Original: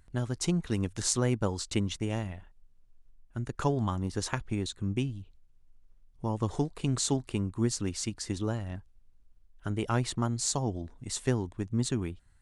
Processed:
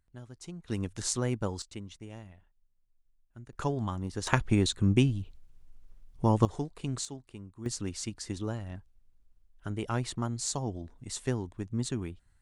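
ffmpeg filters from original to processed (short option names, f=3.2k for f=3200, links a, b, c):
-af "asetnsamples=n=441:p=0,asendcmd='0.68 volume volume -3dB;1.62 volume volume -13dB;3.53 volume volume -3dB;4.27 volume volume 7dB;6.45 volume volume -5dB;7.05 volume volume -14.5dB;7.66 volume volume -3dB',volume=-15dB"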